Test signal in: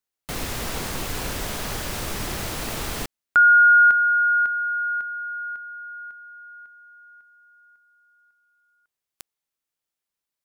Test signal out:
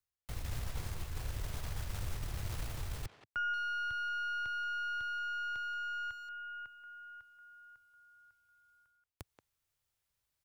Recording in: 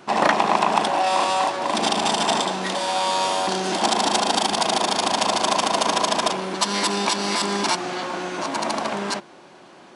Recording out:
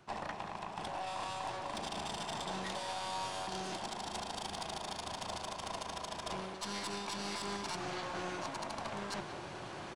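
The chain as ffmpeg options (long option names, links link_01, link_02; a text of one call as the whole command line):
ffmpeg -i in.wav -filter_complex "[0:a]acrossover=split=210[link_01][link_02];[link_02]acompressor=threshold=-26dB:ratio=2.5:attack=79:release=310:knee=2.83:detection=peak[link_03];[link_01][link_03]amix=inputs=2:normalize=0,lowshelf=frequency=150:width_type=q:width=1.5:gain=12.5,areverse,acompressor=threshold=-35dB:ratio=8:attack=0.31:release=338:knee=1:detection=rms,areverse,aeval=exprs='0.0447*(cos(1*acos(clip(val(0)/0.0447,-1,1)))-cos(1*PI/2))+0.00355*(cos(4*acos(clip(val(0)/0.0447,-1,1)))-cos(4*PI/2))':channel_layout=same,asplit=2[link_04][link_05];[link_05]adelay=180,highpass=300,lowpass=3400,asoftclip=type=hard:threshold=-37dB,volume=-9dB[link_06];[link_04][link_06]amix=inputs=2:normalize=0,volume=1.5dB" out.wav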